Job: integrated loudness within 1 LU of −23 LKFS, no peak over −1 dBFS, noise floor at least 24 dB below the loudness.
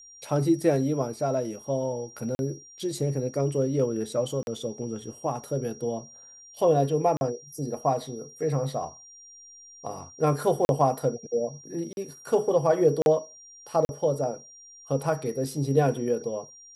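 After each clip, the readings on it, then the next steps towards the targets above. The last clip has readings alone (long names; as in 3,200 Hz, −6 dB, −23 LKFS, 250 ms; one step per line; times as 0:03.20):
number of dropouts 7; longest dropout 41 ms; interfering tone 5,700 Hz; level of the tone −47 dBFS; integrated loudness −27.5 LKFS; sample peak −10.0 dBFS; target loudness −23.0 LKFS
→ repair the gap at 0:02.35/0:04.43/0:07.17/0:10.65/0:11.93/0:13.02/0:13.85, 41 ms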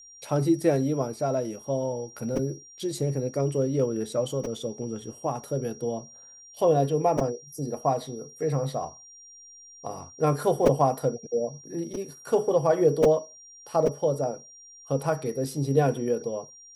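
number of dropouts 0; interfering tone 5,700 Hz; level of the tone −47 dBFS
→ notch filter 5,700 Hz, Q 30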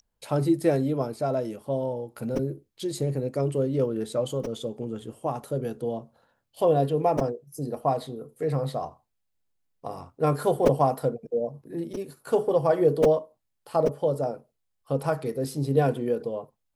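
interfering tone none found; integrated loudness −27.0 LKFS; sample peak −7.5 dBFS; target loudness −23.0 LKFS
→ level +4 dB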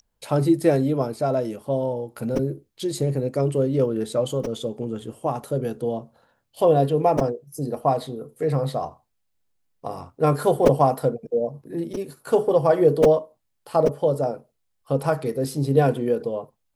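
integrated loudness −23.0 LKFS; sample peak −3.5 dBFS; background noise floor −73 dBFS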